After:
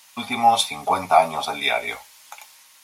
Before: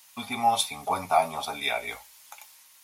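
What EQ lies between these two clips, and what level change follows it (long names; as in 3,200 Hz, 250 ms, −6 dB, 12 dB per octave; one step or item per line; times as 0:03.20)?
low-shelf EQ 65 Hz −12 dB
high-shelf EQ 10,000 Hz −9 dB
+7.0 dB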